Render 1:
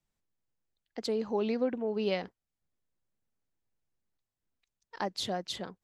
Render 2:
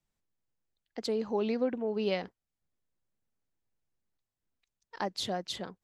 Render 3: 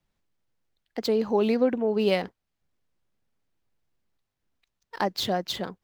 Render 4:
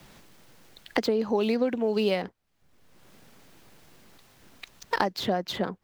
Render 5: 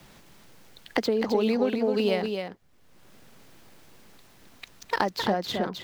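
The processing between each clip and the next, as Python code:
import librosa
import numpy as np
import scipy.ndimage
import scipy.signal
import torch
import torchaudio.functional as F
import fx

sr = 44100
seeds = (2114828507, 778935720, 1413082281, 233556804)

y1 = x
y2 = scipy.signal.medfilt(y1, 5)
y2 = y2 * librosa.db_to_amplitude(7.5)
y3 = fx.band_squash(y2, sr, depth_pct=100)
y3 = y3 * librosa.db_to_amplitude(-1.5)
y4 = y3 + 10.0 ** (-6.0 / 20.0) * np.pad(y3, (int(263 * sr / 1000.0), 0))[:len(y3)]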